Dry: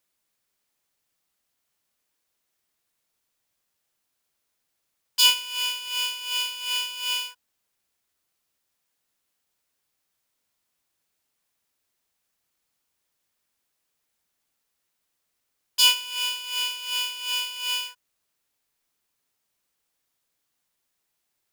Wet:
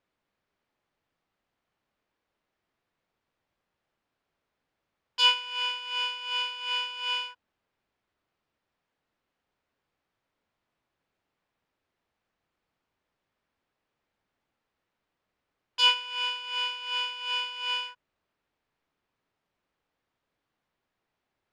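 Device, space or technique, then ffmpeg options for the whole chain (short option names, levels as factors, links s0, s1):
phone in a pocket: -af "lowpass=3800,highshelf=f=2400:g=-12,volume=1.88"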